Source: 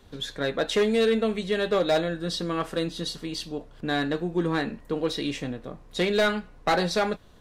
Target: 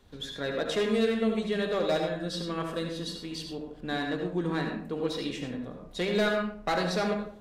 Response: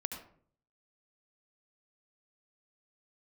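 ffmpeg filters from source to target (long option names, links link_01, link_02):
-filter_complex "[1:a]atrim=start_sample=2205,asetrate=42777,aresample=44100[link_01];[0:a][link_01]afir=irnorm=-1:irlink=0,volume=-4.5dB"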